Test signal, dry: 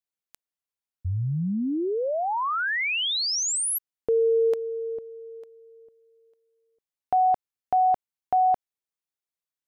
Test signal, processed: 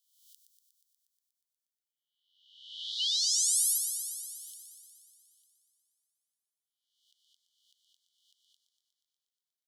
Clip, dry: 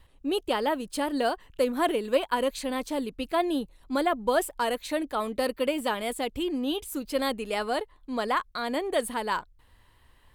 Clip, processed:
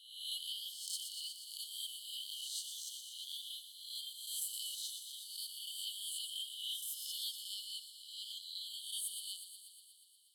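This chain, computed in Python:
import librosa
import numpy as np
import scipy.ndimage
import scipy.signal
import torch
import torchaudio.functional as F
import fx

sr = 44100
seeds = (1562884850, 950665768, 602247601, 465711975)

p1 = fx.spec_swells(x, sr, rise_s=0.85)
p2 = fx.brickwall_highpass(p1, sr, low_hz=2900.0)
p3 = p2 + fx.echo_wet_highpass(p2, sr, ms=120, feedback_pct=73, hz=4400.0, wet_db=-6.5, dry=0)
y = F.gain(torch.from_numpy(p3), -6.5).numpy()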